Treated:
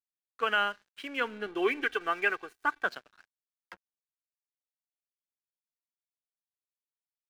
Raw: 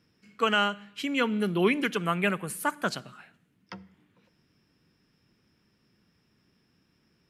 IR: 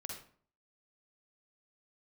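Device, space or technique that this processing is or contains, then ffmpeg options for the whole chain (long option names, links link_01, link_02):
pocket radio on a weak battery: -filter_complex "[0:a]highpass=400,lowpass=3500,aeval=exprs='sgn(val(0))*max(abs(val(0))-0.00376,0)':channel_layout=same,equalizer=frequency=1600:width_type=o:width=0.26:gain=7.5,asettb=1/sr,asplit=3[link_01][link_02][link_03];[link_01]atrim=end=1.464[link_04];[link_02]atrim=start=1.46:end=2.86,asetpts=PTS-STARTPTS,afade=type=in:duration=0.004:curve=qsin,afade=type=out:start_time=1.396:duration=0.004:curve=qsin,aecho=1:1:2.6:0.69,atrim=end_sample=61740[link_05];[link_03]atrim=start=2.856[link_06];[link_04][link_05]acrossfade=duration=0.004:curve1=hsin:curve2=qsin[link_07];[link_07][link_06]acrossfade=duration=0.004:curve1=qsin:curve2=hsin,volume=-3.5dB"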